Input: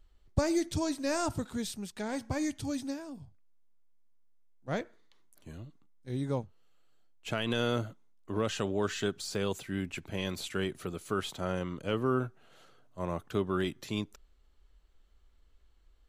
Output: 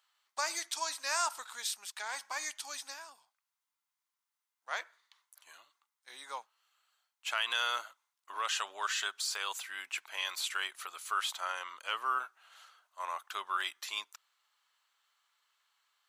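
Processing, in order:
Chebyshev high-pass filter 1,000 Hz, order 3
level +5 dB

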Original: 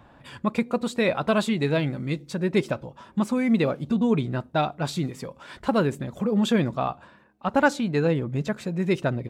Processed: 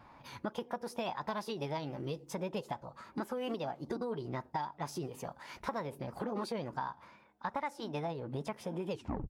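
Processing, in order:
turntable brake at the end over 0.39 s
tape wow and flutter 25 cents
formants moved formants +5 semitones
parametric band 900 Hz +9 dB 0.6 octaves
downward compressor 6 to 1, threshold −27 dBFS, peak gain reduction 17 dB
level −7.5 dB

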